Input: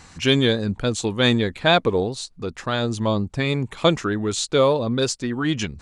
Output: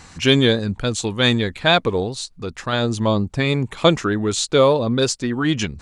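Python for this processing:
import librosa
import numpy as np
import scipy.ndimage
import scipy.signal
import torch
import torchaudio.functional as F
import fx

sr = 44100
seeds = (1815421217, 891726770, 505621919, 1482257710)

y = fx.peak_eq(x, sr, hz=380.0, db=-3.5, octaves=2.9, at=(0.59, 2.73))
y = F.gain(torch.from_numpy(y), 3.0).numpy()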